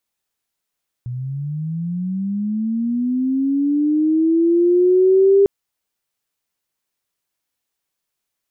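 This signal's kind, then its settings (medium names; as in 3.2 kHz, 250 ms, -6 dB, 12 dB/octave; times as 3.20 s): sweep linear 120 Hz -> 400 Hz -23.5 dBFS -> -8.5 dBFS 4.40 s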